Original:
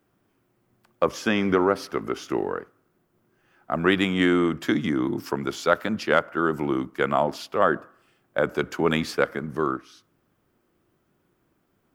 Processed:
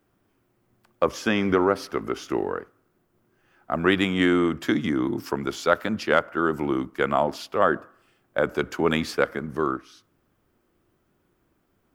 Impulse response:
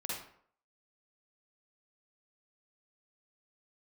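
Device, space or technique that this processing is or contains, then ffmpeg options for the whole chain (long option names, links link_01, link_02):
low shelf boost with a cut just above: -af "lowshelf=frequency=77:gain=7,equalizer=frequency=150:width_type=o:width=0.72:gain=-3"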